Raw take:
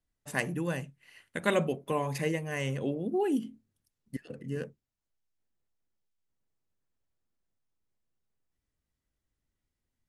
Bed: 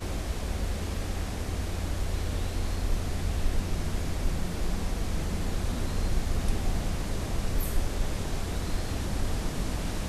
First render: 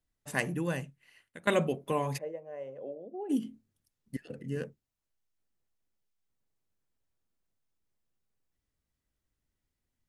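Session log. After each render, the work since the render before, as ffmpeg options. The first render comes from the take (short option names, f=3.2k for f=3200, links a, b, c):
-filter_complex "[0:a]asplit=3[a][b][c];[a]afade=t=out:st=2.17:d=0.02[d];[b]bandpass=f=580:t=q:w=4.3,afade=t=in:st=2.17:d=0.02,afade=t=out:st=3.29:d=0.02[e];[c]afade=t=in:st=3.29:d=0.02[f];[d][e][f]amix=inputs=3:normalize=0,asettb=1/sr,asplit=3[g][h][i];[g]atrim=end=4.164[j];[h]atrim=start=4.16:end=4.57,asetpts=PTS-STARTPTS,afade=t=in:d=0.004:c=qsin,afade=t=out:st=0.406:d=0.004:c=qsin,bandreject=f=1.1k:w=6.7[k];[i]atrim=start=4.566[l];[j][k]acrossfade=d=0.004:c1=hsin:c2=qsin[m];[m][l]acrossfade=d=0.004:c1=qsin:c2=hsin,asplit=2[n][o];[n]atrim=end=1.47,asetpts=PTS-STARTPTS,afade=t=out:st=0.77:d=0.7:silence=0.133352[p];[o]atrim=start=1.47,asetpts=PTS-STARTPTS,afade=t=in:d=0.004:c=hsin:silence=0.133352[q];[p][q]concat=n=2:v=0:a=1"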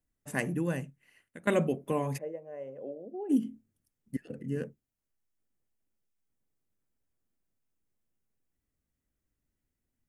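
-af "equalizer=f=250:t=o:w=1:g=4,equalizer=f=1k:t=o:w=1:g=-3,equalizer=f=4k:t=o:w=1:g=-8"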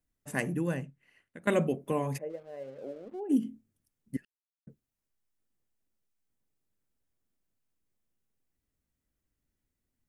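-filter_complex "[0:a]asettb=1/sr,asplit=3[a][b][c];[a]atrim=end=0.744[d];[b]atrim=start=0.74:end=1.42,asetpts=PTS-STARTPTS,afade=t=in:d=0.004:c=qsin,afade=t=out:st=0.676:d=0.004:c=qsin,lowpass=f=3.7k:p=1[e];[c]atrim=start=1.416[f];[d][e]acrossfade=d=0.004:c1=hsin:c2=qsin[g];[g][f]acrossfade=d=0.004:c1=qsin:c2=hsin,asplit=3[h][i][j];[h]afade=t=out:st=2.29:d=0.02[k];[i]aeval=exprs='sgn(val(0))*max(abs(val(0))-0.00106,0)':c=same,afade=t=in:st=2.29:d=0.02,afade=t=out:st=3.19:d=0.02[l];[j]afade=t=in:st=3.19:d=0.02[m];[k][l][m]amix=inputs=3:normalize=0,asplit=3[n][o][p];[n]atrim=end=4.25,asetpts=PTS-STARTPTS,afade=t=out:st=4.246:d=0.004:c=hsin[q];[o]atrim=start=4.25:end=4.67,asetpts=PTS-STARTPTS,volume=0[r];[p]atrim=start=4.67,asetpts=PTS-STARTPTS,afade=t=in:d=0.004:c=hsin[s];[q][r][s]concat=n=3:v=0:a=1"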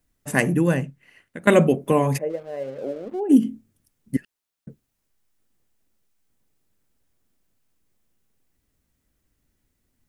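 -af "volume=11.5dB"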